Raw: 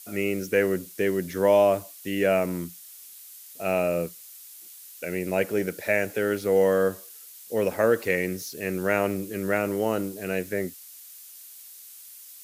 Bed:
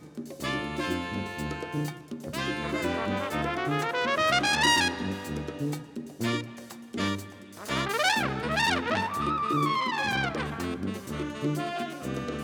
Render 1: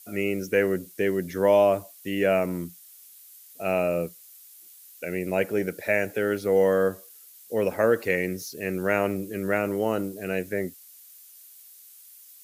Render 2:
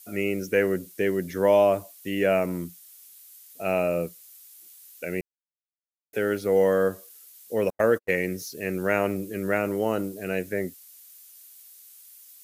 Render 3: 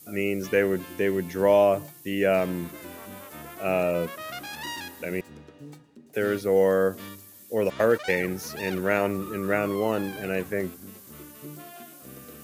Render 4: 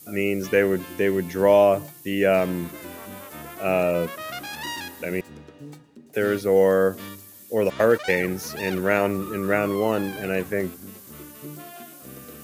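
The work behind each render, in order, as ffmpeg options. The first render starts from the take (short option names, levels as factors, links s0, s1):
-af "afftdn=nr=6:nf=-46"
-filter_complex "[0:a]asettb=1/sr,asplit=3[s0][s1][s2];[s0]atrim=end=7.704[s3];[s1]atrim=start=7.7:end=8.11,asetpts=PTS-STARTPTS,afade=t=in:d=0.004:c=qsin,afade=t=out:st=0.406:d=0.004:c=qsin,agate=range=0.00126:threshold=0.0398:ratio=16:release=100:detection=peak[s4];[s2]atrim=start=8.106[s5];[s3][s4]acrossfade=d=0.004:c1=hsin:c2=qsin[s6];[s6][s5]acrossfade=d=0.004:c1=qsin:c2=hsin,asplit=3[s7][s8][s9];[s7]atrim=end=5.21,asetpts=PTS-STARTPTS,afade=t=out:st=5.206:d=0.004:c=hsin[s10];[s8]atrim=start=5.21:end=6.13,asetpts=PTS-STARTPTS,volume=0[s11];[s9]atrim=start=6.13,asetpts=PTS-STARTPTS,afade=t=in:d=0.004:c=hsin[s12];[s10][s11][s12]concat=n=3:v=0:a=1"
-filter_complex "[1:a]volume=0.224[s0];[0:a][s0]amix=inputs=2:normalize=0"
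-af "volume=1.41"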